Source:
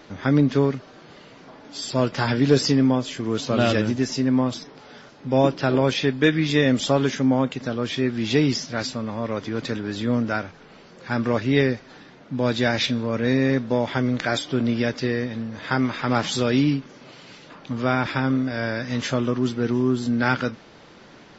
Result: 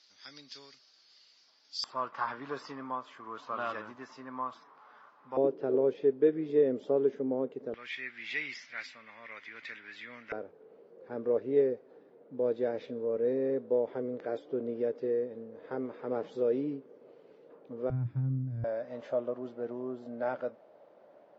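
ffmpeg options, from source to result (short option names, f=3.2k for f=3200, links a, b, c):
-af "asetnsamples=n=441:p=0,asendcmd='1.84 bandpass f 1100;5.37 bandpass f 430;7.74 bandpass f 2100;10.32 bandpass f 460;17.9 bandpass f 120;18.64 bandpass f 600',bandpass=f=4.9k:t=q:w=5.1:csg=0"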